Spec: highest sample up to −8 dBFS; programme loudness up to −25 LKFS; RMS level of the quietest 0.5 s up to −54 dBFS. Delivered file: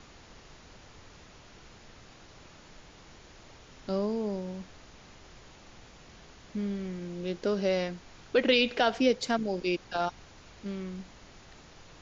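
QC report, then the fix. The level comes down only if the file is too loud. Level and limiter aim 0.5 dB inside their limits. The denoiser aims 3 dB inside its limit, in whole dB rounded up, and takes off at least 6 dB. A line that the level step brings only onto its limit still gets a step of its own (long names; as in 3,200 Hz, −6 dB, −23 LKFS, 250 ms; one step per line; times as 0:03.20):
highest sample −11.5 dBFS: in spec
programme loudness −30.0 LKFS: in spec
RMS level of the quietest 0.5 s −53 dBFS: out of spec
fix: broadband denoise 6 dB, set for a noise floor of −53 dBFS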